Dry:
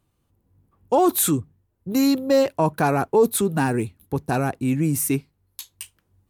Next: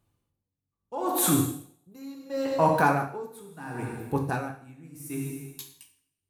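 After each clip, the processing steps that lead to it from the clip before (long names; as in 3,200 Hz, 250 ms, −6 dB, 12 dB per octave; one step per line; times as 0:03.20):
coupled-rooms reverb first 0.95 s, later 2.8 s, from −27 dB, DRR 0.5 dB
dynamic equaliser 1,300 Hz, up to +6 dB, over −35 dBFS, Q 1
tremolo with a sine in dB 0.73 Hz, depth 25 dB
level −4 dB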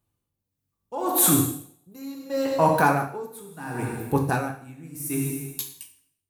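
high-shelf EQ 9,000 Hz +8 dB
automatic gain control gain up to 11.5 dB
level −5.5 dB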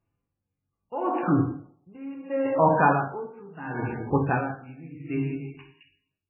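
MP3 8 kbit/s 11,025 Hz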